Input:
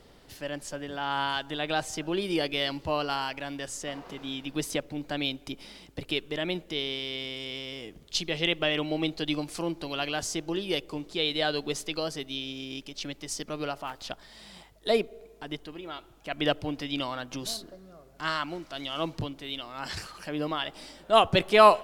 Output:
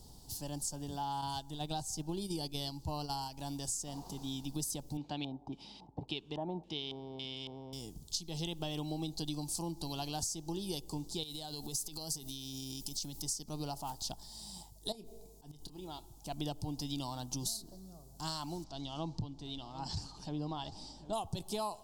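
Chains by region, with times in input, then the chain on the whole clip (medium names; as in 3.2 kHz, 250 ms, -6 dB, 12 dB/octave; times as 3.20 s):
1.21–3.39 s: bass shelf 160 Hz +5 dB + gate -32 dBFS, range -7 dB
4.97–7.73 s: high-pass 200 Hz 6 dB/octave + LFO low-pass square 1.8 Hz 870–2700 Hz
11.23–13.22 s: transient shaper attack -2 dB, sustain +4 dB + compression 5:1, threshold -36 dBFS + treble shelf 8.5 kHz +11.5 dB
14.92–15.88 s: compression 12:1, threshold -36 dBFS + slow attack 117 ms + doubling 27 ms -12 dB
18.64–21.13 s: distance through air 140 m + delay 751 ms -16.5 dB
whole clip: FFT filter 130 Hz 0 dB, 360 Hz -10 dB, 560 Hz -17 dB, 860 Hz -3 dB, 1.3 kHz -22 dB, 2.1 kHz -28 dB, 4.6 kHz 0 dB, 7.6 kHz +5 dB; compression 16:1, threshold -38 dBFS; trim +4 dB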